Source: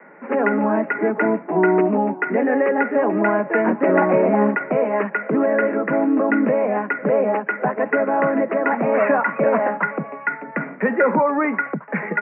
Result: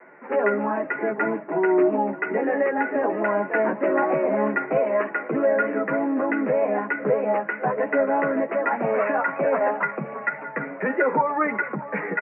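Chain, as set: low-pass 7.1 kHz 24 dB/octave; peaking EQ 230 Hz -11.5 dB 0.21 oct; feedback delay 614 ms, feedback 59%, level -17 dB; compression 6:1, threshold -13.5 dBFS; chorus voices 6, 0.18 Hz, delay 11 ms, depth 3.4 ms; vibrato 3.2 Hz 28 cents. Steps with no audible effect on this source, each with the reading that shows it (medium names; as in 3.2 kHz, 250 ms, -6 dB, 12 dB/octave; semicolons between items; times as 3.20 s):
low-pass 7.1 kHz: input has nothing above 2.3 kHz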